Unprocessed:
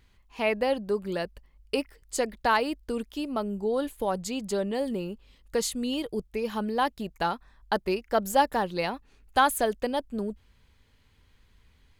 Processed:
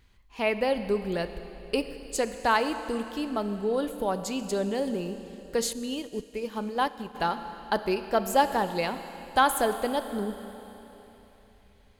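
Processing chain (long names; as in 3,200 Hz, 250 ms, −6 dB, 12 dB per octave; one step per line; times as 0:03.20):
0:00.75–0:02.16: low-shelf EQ 93 Hz +11 dB
four-comb reverb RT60 3.4 s, combs from 27 ms, DRR 9.5 dB
0:05.73–0:07.15: expander for the loud parts 1.5 to 1, over −40 dBFS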